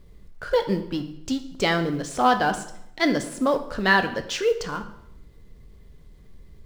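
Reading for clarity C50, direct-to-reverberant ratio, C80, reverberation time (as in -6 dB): 11.5 dB, 7.5 dB, 14.0 dB, 0.80 s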